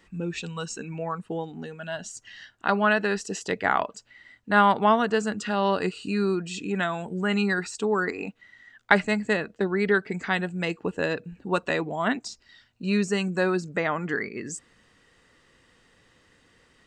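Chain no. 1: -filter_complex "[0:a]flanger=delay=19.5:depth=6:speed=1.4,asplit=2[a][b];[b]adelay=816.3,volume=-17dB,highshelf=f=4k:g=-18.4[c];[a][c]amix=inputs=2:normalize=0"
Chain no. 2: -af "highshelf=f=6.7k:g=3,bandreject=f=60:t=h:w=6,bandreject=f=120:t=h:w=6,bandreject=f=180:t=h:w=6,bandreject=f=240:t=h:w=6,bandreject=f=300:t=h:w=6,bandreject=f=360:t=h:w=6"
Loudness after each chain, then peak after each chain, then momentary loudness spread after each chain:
-29.0, -26.5 LUFS; -6.0, -2.5 dBFS; 16, 14 LU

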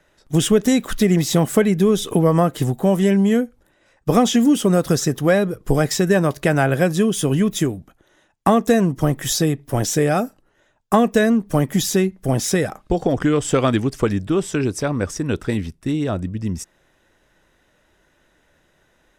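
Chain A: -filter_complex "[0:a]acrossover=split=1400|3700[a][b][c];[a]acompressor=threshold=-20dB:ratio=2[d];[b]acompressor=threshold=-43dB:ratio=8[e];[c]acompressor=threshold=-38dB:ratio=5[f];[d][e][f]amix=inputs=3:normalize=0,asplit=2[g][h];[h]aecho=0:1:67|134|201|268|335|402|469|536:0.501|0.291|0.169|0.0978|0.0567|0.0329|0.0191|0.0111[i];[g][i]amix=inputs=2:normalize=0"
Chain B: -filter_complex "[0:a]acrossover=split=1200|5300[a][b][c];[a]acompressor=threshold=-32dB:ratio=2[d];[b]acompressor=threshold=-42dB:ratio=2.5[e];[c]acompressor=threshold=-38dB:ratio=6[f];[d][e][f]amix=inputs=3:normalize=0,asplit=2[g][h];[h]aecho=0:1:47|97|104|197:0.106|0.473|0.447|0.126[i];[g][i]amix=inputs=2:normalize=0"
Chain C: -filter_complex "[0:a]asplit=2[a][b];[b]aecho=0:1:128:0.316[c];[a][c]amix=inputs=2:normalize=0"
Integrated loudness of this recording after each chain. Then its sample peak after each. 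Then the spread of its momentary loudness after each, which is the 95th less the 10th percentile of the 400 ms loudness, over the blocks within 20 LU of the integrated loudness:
-22.0, -27.0, -18.5 LUFS; -6.0, -11.0, -2.0 dBFS; 6, 6, 8 LU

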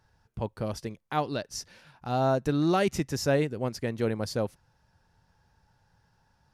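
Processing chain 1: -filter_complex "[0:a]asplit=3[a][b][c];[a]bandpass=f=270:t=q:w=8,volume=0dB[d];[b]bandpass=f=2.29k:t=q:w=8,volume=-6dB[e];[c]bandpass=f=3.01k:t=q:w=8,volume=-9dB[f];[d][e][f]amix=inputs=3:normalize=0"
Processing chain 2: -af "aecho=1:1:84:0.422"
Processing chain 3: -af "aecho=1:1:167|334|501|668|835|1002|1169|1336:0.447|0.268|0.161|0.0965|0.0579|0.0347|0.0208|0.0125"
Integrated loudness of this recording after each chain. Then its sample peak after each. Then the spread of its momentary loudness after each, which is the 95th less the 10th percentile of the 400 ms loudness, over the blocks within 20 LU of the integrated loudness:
-40.0, -28.5, -28.5 LUFS; -26.0, -12.0, -11.5 dBFS; 18, 13, 15 LU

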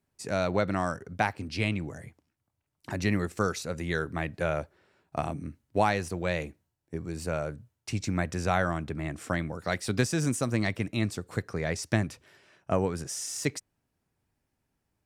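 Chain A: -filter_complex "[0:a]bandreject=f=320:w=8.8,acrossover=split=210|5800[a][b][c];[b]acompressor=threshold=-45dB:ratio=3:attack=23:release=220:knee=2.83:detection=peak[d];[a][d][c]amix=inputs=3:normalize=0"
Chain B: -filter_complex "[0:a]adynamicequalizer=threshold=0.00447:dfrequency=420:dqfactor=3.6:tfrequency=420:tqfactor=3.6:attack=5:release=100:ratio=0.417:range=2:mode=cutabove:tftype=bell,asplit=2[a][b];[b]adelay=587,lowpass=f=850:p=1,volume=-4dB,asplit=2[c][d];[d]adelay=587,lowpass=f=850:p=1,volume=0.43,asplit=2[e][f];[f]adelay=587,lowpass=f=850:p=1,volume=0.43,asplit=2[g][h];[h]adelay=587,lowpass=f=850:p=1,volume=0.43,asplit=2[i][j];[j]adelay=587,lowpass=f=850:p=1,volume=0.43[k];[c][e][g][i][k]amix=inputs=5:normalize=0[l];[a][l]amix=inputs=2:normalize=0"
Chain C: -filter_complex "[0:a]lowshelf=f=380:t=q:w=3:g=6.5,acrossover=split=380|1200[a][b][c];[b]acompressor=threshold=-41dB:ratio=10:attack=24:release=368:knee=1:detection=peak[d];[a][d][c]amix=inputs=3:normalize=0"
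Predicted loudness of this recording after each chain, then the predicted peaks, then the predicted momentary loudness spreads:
-36.0, -30.5, -26.0 LUFS; -18.0, -9.0, -7.0 dBFS; 10, 11, 11 LU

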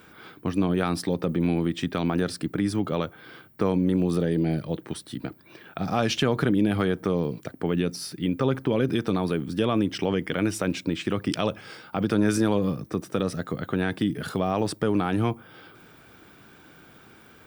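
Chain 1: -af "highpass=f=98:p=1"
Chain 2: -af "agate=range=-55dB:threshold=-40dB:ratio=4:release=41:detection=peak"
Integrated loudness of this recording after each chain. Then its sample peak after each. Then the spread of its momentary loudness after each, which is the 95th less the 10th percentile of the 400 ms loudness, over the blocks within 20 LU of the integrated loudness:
-27.0, -26.5 LUFS; -8.0, -8.0 dBFS; 10, 9 LU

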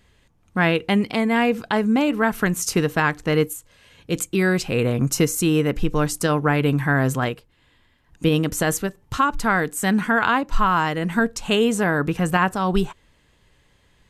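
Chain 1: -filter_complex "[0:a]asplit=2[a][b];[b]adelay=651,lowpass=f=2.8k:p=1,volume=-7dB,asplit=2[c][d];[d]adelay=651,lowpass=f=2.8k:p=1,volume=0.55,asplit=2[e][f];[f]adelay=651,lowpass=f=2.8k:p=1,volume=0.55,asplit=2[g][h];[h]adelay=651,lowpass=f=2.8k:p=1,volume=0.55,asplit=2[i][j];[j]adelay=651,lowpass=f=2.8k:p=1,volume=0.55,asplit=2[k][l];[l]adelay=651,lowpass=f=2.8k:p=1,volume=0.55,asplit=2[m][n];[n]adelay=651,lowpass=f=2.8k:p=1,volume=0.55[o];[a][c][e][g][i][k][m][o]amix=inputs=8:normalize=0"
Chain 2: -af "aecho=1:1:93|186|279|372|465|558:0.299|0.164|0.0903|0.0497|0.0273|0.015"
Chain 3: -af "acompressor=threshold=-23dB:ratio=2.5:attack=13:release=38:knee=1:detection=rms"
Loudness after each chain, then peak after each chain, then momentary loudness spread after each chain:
-21.0, -20.5, -25.0 LUFS; -4.5, -5.0, -9.0 dBFS; 8, 6, 5 LU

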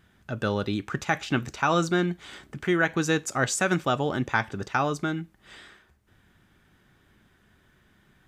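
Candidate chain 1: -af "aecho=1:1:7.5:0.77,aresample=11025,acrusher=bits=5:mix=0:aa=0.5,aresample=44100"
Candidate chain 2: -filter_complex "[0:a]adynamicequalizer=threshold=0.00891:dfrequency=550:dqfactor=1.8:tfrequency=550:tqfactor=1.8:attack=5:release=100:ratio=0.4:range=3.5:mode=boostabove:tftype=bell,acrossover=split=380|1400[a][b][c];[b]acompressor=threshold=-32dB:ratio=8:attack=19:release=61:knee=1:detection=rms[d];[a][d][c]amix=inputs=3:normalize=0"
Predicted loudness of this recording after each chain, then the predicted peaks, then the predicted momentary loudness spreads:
-25.0, -27.5 LUFS; -5.5, -10.5 dBFS; 10, 9 LU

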